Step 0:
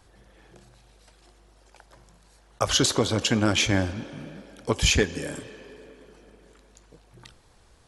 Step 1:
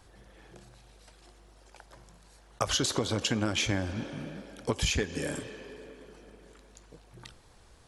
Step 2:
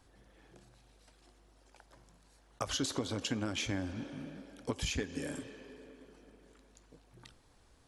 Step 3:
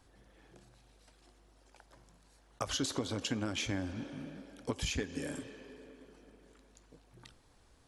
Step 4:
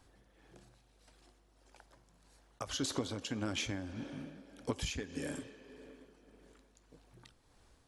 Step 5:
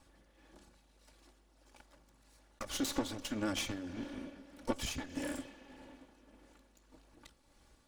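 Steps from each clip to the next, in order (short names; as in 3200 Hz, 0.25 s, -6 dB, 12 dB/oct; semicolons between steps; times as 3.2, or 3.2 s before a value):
compressor 6:1, threshold -25 dBFS, peak gain reduction 9.5 dB
bell 270 Hz +8.5 dB 0.21 oct; gain -7.5 dB
nothing audible
tremolo 1.7 Hz, depth 45%
minimum comb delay 3.5 ms; gain +1.5 dB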